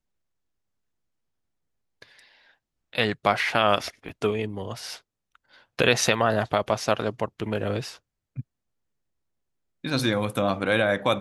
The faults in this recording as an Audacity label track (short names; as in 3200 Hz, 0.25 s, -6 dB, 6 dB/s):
4.090000	4.090000	gap 3.2 ms